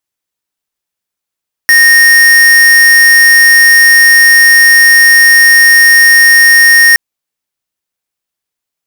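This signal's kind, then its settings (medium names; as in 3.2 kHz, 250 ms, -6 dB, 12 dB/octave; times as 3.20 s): tone square 1.85 kHz -4 dBFS 5.27 s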